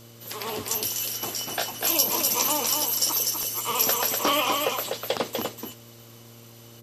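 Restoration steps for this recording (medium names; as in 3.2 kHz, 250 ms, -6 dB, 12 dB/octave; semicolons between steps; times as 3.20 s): de-click; de-hum 116.3 Hz, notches 5; expander -40 dBFS, range -21 dB; inverse comb 247 ms -4.5 dB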